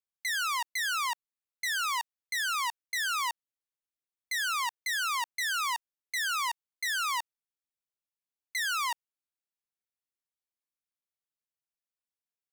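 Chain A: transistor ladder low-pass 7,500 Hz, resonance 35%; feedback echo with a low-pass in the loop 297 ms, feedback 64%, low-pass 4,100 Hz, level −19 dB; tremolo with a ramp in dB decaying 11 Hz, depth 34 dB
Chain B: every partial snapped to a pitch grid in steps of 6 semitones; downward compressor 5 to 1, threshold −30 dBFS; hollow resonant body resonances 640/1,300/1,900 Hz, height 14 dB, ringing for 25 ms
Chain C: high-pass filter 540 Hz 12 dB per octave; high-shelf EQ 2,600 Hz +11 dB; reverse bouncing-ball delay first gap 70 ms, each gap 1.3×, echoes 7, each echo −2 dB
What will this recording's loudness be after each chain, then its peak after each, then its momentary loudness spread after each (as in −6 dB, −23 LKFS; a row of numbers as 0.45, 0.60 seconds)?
−46.5, −29.0, −21.5 LKFS; −29.0, −18.5, −5.0 dBFS; 8, 7, 14 LU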